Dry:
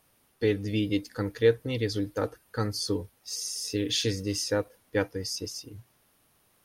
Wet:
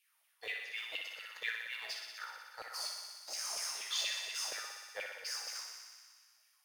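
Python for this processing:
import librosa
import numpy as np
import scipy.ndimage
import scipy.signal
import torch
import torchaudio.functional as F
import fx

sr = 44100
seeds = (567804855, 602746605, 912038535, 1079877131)

p1 = fx.tone_stack(x, sr, knobs='10-0-10')
p2 = fx.schmitt(p1, sr, flips_db=-35.5)
p3 = p1 + (p2 * 10.0 ** (-3.0 / 20.0))
p4 = fx.comb_fb(p3, sr, f0_hz=59.0, decay_s=0.48, harmonics='all', damping=0.0, mix_pct=80)
p5 = fx.filter_lfo_highpass(p4, sr, shape='saw_down', hz=4.2, low_hz=540.0, high_hz=2700.0, q=5.4)
p6 = p5 + fx.echo_thinned(p5, sr, ms=61, feedback_pct=80, hz=360.0, wet_db=-6, dry=0)
p7 = fx.room_shoebox(p6, sr, seeds[0], volume_m3=2900.0, walls='furnished', distance_m=0.52)
y = p7 * 10.0 ** (-1.5 / 20.0)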